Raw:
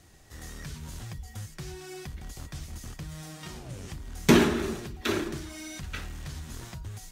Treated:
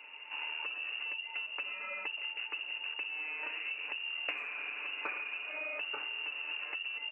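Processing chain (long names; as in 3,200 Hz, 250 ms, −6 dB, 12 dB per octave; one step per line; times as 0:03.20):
wavefolder on the positive side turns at −16.5 dBFS
voice inversion scrambler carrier 2,800 Hz
high-pass filter 320 Hz 24 dB per octave
comb filter 6.8 ms, depth 44%
far-end echo of a speakerphone 80 ms, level −23 dB
spring reverb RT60 3.2 s, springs 42 ms, chirp 40 ms, DRR 15 dB
downward compressor 20 to 1, threshold −41 dBFS, peak gain reduction 27.5 dB
level +5.5 dB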